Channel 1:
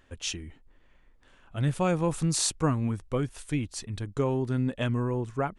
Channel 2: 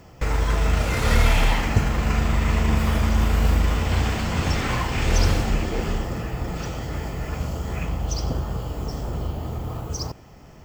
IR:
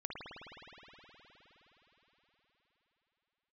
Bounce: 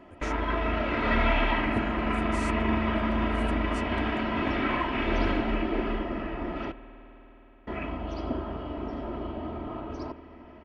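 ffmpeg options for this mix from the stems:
-filter_complex "[0:a]acompressor=threshold=-39dB:ratio=3,volume=-9dB[a];[1:a]lowpass=f=2.9k:w=0.5412,lowpass=f=2.9k:w=1.3066,lowshelf=f=140:t=q:w=1.5:g=-10.5,aecho=1:1:3.1:0.73,volume=-4dB,asplit=3[b][c][d];[b]atrim=end=6.72,asetpts=PTS-STARTPTS,afade=t=out:st=6.716:d=0.004:c=hsin[e];[c]atrim=start=6.72:end=7.67,asetpts=PTS-STARTPTS,volume=0[f];[d]atrim=start=7.67,asetpts=PTS-STARTPTS,afade=t=in:d=0.004:c=hsin[g];[e][f][g]concat=n=3:v=0:a=1,asplit=2[h][i];[i]volume=-14dB[j];[2:a]atrim=start_sample=2205[k];[j][k]afir=irnorm=-1:irlink=0[l];[a][h][l]amix=inputs=3:normalize=0"

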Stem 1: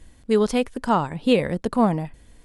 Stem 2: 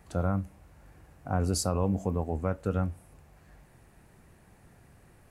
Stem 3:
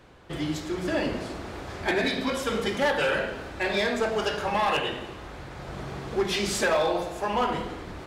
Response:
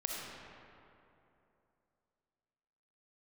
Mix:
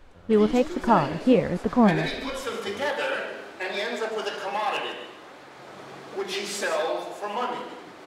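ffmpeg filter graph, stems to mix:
-filter_complex "[0:a]lowpass=1.9k,dynaudnorm=f=170:g=3:m=11.5dB,volume=-2.5dB[a];[1:a]volume=-19.5dB[b];[2:a]highpass=290,volume=1.5dB,asplit=2[c][d];[d]volume=-10dB,aecho=0:1:152:1[e];[a][b][c][e]amix=inputs=4:normalize=0,flanger=delay=3.3:depth=6.8:regen=73:speed=1.3:shape=sinusoidal"

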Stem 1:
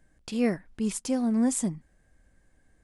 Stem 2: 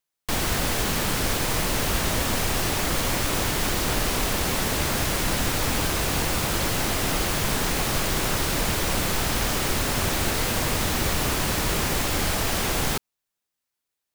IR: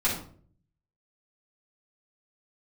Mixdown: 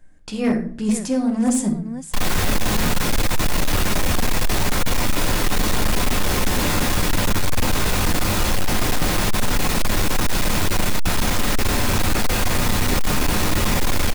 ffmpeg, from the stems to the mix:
-filter_complex "[0:a]volume=2.5dB,asplit=3[a][b][c];[b]volume=-11dB[d];[c]volume=-10dB[e];[1:a]adelay=1850,volume=-2.5dB,asplit=2[f][g];[g]volume=-6dB[h];[2:a]atrim=start_sample=2205[i];[d][h]amix=inputs=2:normalize=0[j];[j][i]afir=irnorm=-1:irlink=0[k];[e]aecho=0:1:512:1[l];[a][f][k][l]amix=inputs=4:normalize=0,volume=13dB,asoftclip=hard,volume=-13dB"

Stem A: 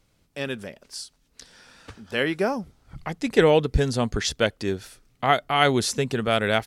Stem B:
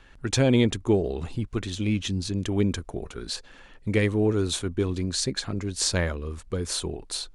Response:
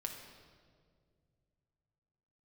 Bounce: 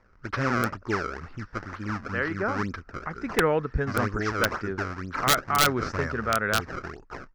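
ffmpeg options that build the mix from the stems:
-filter_complex "[0:a]highshelf=f=2.4k:g=-11.5,volume=-6dB[a];[1:a]bandreject=f=7.7k:w=12,acrusher=samples=28:mix=1:aa=0.000001:lfo=1:lforange=44.8:lforate=2.1,volume=-8dB[b];[a][b]amix=inputs=2:normalize=0,firequalizer=gain_entry='entry(770,0);entry(1300,14);entry(3400,-10);entry(5300,2);entry(9800,-27)':delay=0.05:min_phase=1,aeval=exprs='(mod(3.98*val(0)+1,2)-1)/3.98':c=same"

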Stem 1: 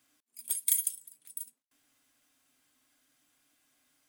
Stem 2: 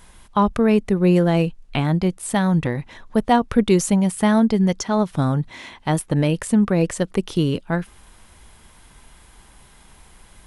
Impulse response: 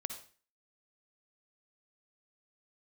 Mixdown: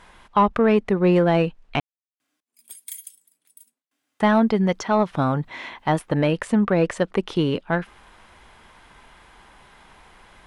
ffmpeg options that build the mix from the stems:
-filter_complex "[0:a]highpass=160,adelay=2200,volume=-1.5dB[a];[1:a]asplit=2[b][c];[c]highpass=f=720:p=1,volume=13dB,asoftclip=type=tanh:threshold=-3.5dB[d];[b][d]amix=inputs=2:normalize=0,lowpass=f=2.5k:p=1,volume=-6dB,volume=-1.5dB,asplit=3[e][f][g];[e]atrim=end=1.8,asetpts=PTS-STARTPTS,afade=t=out:st=1.796:d=0.004:c=hsin[h];[f]atrim=start=1.8:end=4.2,asetpts=PTS-STARTPTS,volume=0[i];[g]atrim=start=4.2,asetpts=PTS-STARTPTS,afade=t=in:d=0.004:c=hsin[j];[h][i][j]concat=n=3:v=0:a=1[k];[a][k]amix=inputs=2:normalize=0,highshelf=f=5.3k:g=-9.5"

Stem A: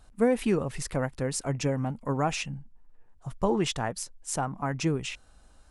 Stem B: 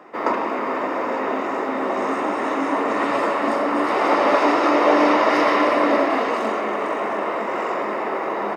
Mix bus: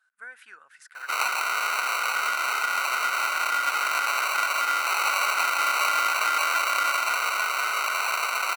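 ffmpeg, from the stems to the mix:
-filter_complex "[0:a]volume=-16dB[a];[1:a]acrusher=samples=26:mix=1:aa=0.000001,adelay=950,volume=1.5dB[b];[a][b]amix=inputs=2:normalize=0,highpass=f=1.5k:t=q:w=13,acompressor=threshold=-23dB:ratio=3"

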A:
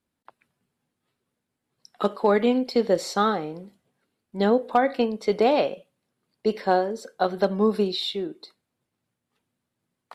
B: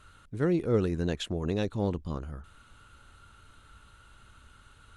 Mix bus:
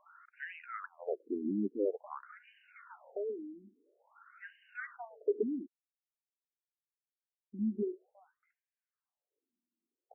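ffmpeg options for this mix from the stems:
-filter_complex "[0:a]lowpass=2.5k,aemphasis=mode=reproduction:type=75kf,volume=-7.5dB,asplit=3[a][b][c];[a]atrim=end=5.66,asetpts=PTS-STARTPTS,afade=t=out:st=5.656:d=0.004:c=hsin[d];[b]atrim=start=5.66:end=7.54,asetpts=PTS-STARTPTS,volume=0[e];[c]atrim=start=7.54,asetpts=PTS-STARTPTS,afade=t=in:d=0.004:c=hsin[f];[d][e][f]concat=n=3:v=0:a=1[g];[1:a]volume=1.5dB,asplit=2[h][i];[i]apad=whole_len=447530[j];[g][j]sidechaincompress=threshold=-46dB:ratio=6:attack=16:release=469[k];[k][h]amix=inputs=2:normalize=0,afftfilt=real='re*between(b*sr/1024,260*pow(2200/260,0.5+0.5*sin(2*PI*0.49*pts/sr))/1.41,260*pow(2200/260,0.5+0.5*sin(2*PI*0.49*pts/sr))*1.41)':imag='im*between(b*sr/1024,260*pow(2200/260,0.5+0.5*sin(2*PI*0.49*pts/sr))/1.41,260*pow(2200/260,0.5+0.5*sin(2*PI*0.49*pts/sr))*1.41)':win_size=1024:overlap=0.75"

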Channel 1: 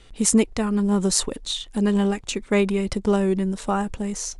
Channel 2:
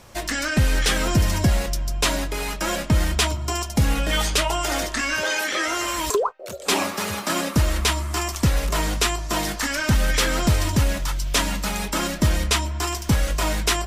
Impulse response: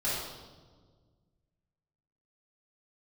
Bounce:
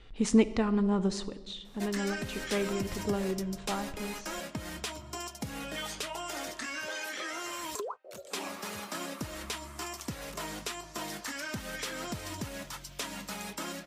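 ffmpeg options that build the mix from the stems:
-filter_complex "[0:a]lowpass=3.9k,volume=-4.5dB,afade=t=out:st=0.86:d=0.38:silence=0.421697,asplit=2[a][b];[b]volume=-20.5dB[c];[1:a]highpass=130,acompressor=threshold=-22dB:ratio=6,adelay=1650,volume=-11.5dB[d];[2:a]atrim=start_sample=2205[e];[c][e]afir=irnorm=-1:irlink=0[f];[a][d][f]amix=inputs=3:normalize=0"

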